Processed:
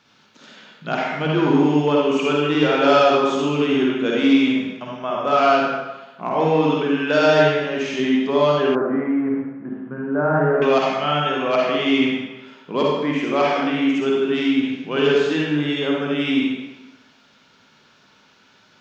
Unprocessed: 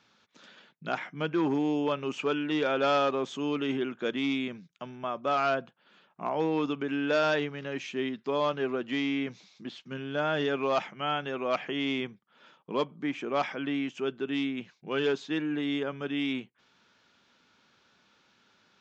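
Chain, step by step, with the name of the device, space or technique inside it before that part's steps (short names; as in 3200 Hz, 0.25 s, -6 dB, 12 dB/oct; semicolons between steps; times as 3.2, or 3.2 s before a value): bathroom (reverb RT60 1.1 s, pre-delay 45 ms, DRR -3.5 dB); 8.75–10.62 steep low-pass 1600 Hz 36 dB/oct; gain +6 dB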